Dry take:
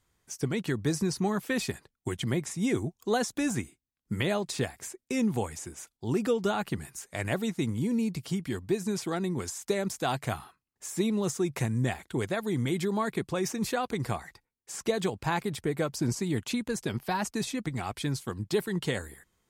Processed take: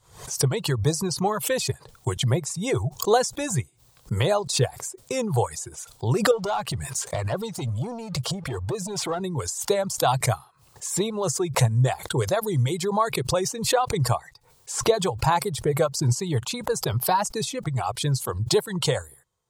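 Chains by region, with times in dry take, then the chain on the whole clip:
0:06.31–0:09.21: high-shelf EQ 11,000 Hz −11 dB + downward compressor 4 to 1, threshold −40 dBFS + leveller curve on the samples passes 3
whole clip: reverb reduction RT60 1.3 s; graphic EQ with 10 bands 125 Hz +12 dB, 250 Hz −11 dB, 500 Hz +9 dB, 1,000 Hz +8 dB, 2,000 Hz −4 dB, 4,000 Hz +5 dB, 8,000 Hz +6 dB; background raised ahead of every attack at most 110 dB per second; level +1.5 dB

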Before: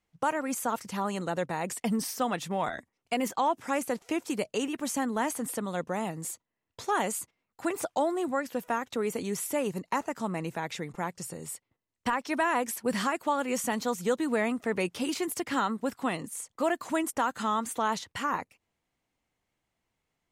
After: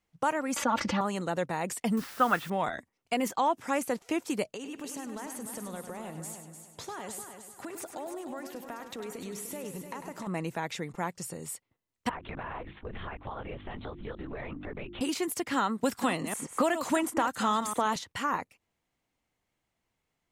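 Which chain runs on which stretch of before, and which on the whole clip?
0:00.56–0:01.01: high-frequency loss of the air 210 metres + comb filter 3.5 ms, depth 95% + envelope flattener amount 70%
0:01.97–0:02.50: low-pass filter 3,500 Hz 24 dB per octave + parametric band 1,400 Hz +13 dB 0.59 octaves + bit-depth reduction 8 bits, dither triangular
0:04.47–0:10.27: downward compressor, threshold −37 dBFS + echo machine with several playback heads 100 ms, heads first and third, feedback 45%, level −9 dB
0:12.09–0:15.01: linear-prediction vocoder at 8 kHz whisper + mains-hum notches 50/100/150/200/250/300/350 Hz + downward compressor 5 to 1, threshold −36 dBFS
0:15.83–0:17.96: delay that plays each chunk backwards 127 ms, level −10.5 dB + multiband upward and downward compressor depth 100%
whole clip: no processing

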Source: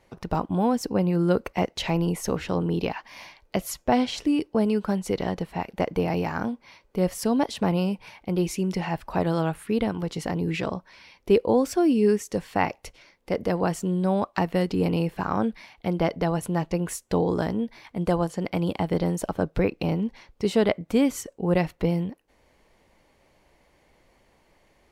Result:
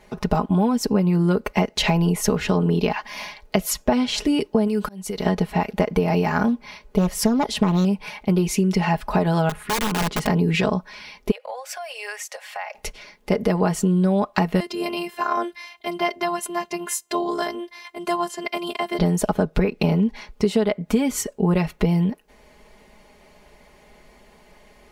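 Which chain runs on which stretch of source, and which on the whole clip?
0:04.67–0:05.26: high-shelf EQ 5,200 Hz +10.5 dB + downward compressor 12 to 1, threshold −24 dBFS + volume swells 690 ms
0:06.48–0:07.85: low-shelf EQ 160 Hz +5.5 dB + highs frequency-modulated by the lows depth 0.42 ms
0:09.49–0:10.27: high-shelf EQ 3,200 Hz −9.5 dB + downward compressor 12 to 1, threshold −26 dBFS + wrap-around overflow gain 27 dB
0:11.31–0:12.75: Chebyshev high-pass with heavy ripple 510 Hz, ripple 6 dB + downward compressor 4 to 1, threshold −38 dBFS
0:14.60–0:18.99: low-shelf EQ 460 Hz −11 dB + phases set to zero 347 Hz + high-pass filter 100 Hz
whole clip: comb filter 4.8 ms, depth 72%; downward compressor 10 to 1, threshold −24 dBFS; level +8.5 dB

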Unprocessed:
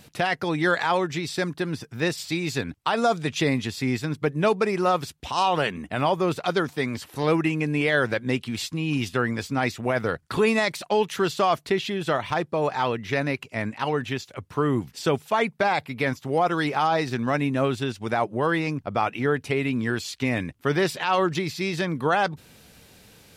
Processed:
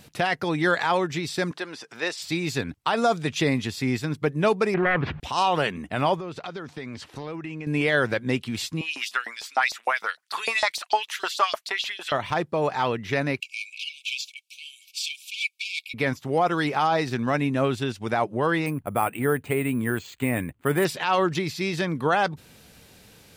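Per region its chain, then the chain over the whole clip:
0:01.51–0:02.22: band-pass filter 510–7,800 Hz + upward compression, threshold −34 dBFS
0:04.74–0:05.20: phase distortion by the signal itself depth 0.35 ms + low-pass filter 2,300 Hz 24 dB per octave + envelope flattener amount 70%
0:06.15–0:07.67: low-pass filter 6,100 Hz + downward compressor 8 to 1, threshold −31 dBFS
0:08.81–0:12.12: high-pass filter 150 Hz + auto-filter high-pass saw up 6.6 Hz 640–5,400 Hz
0:13.40–0:15.94: mid-hump overdrive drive 14 dB, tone 5,500 Hz, clips at −11 dBFS + linear-phase brick-wall high-pass 2,200 Hz
0:18.66–0:20.85: low-pass filter 2,800 Hz + bad sample-rate conversion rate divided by 4×, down filtered, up hold
whole clip: no processing

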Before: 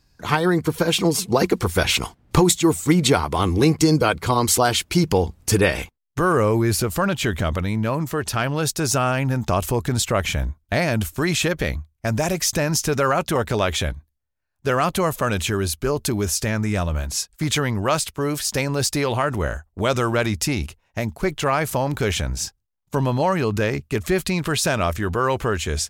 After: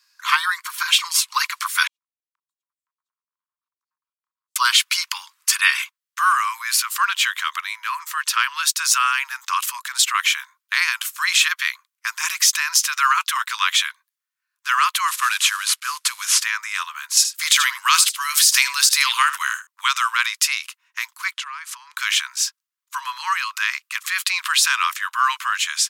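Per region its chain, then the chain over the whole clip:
0:01.87–0:04.56: lower of the sound and its delayed copy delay 2.1 ms + inverse Chebyshev low-pass filter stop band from 610 Hz, stop band 70 dB + downward compressor 3 to 1, threshold −37 dBFS
0:15.08–0:16.42: variable-slope delta modulation 64 kbit/s + high-shelf EQ 5,000 Hz +7 dB
0:17.17–0:19.67: high-shelf EQ 2,700 Hz +9.5 dB + single-tap delay 76 ms −14 dB
0:21.34–0:21.97: low-pass filter 8,500 Hz + downward compressor 10 to 1, threshold −30 dBFS
whole clip: Butterworth high-pass 1,000 Hz 96 dB per octave; dynamic equaliser 3,200 Hz, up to +3 dB, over −36 dBFS, Q 1.1; boost into a limiter +7.5 dB; level −2 dB

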